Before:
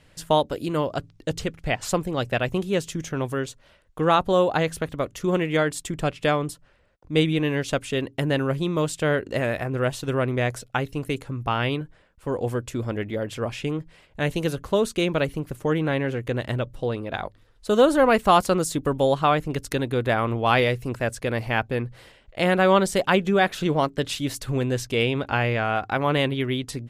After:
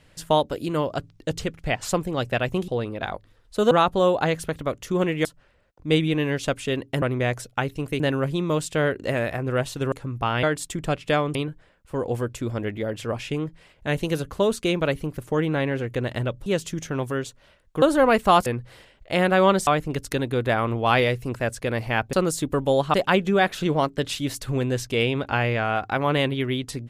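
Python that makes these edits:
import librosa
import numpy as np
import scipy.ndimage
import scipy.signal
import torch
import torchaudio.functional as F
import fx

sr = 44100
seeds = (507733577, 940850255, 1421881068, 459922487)

y = fx.edit(x, sr, fx.swap(start_s=2.68, length_s=1.36, other_s=16.79, other_length_s=1.03),
    fx.move(start_s=5.58, length_s=0.92, to_s=11.68),
    fx.move(start_s=10.19, length_s=0.98, to_s=8.27),
    fx.swap(start_s=18.46, length_s=0.81, other_s=21.73, other_length_s=1.21), tone=tone)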